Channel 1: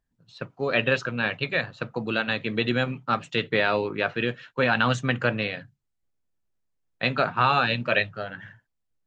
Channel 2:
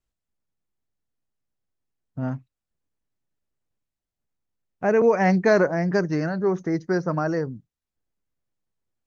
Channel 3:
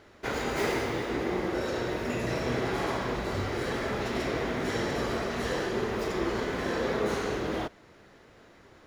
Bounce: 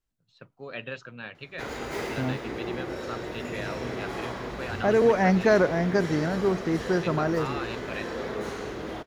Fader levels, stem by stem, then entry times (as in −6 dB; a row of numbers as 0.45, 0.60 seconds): −14.0, −2.0, −4.0 decibels; 0.00, 0.00, 1.35 seconds